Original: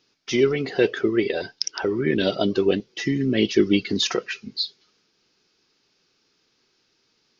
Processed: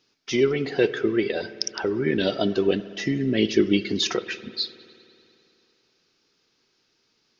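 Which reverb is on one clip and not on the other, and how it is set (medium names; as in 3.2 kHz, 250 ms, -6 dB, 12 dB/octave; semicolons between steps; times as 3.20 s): spring tank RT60 2.8 s, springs 55 ms, chirp 50 ms, DRR 14.5 dB; trim -1.5 dB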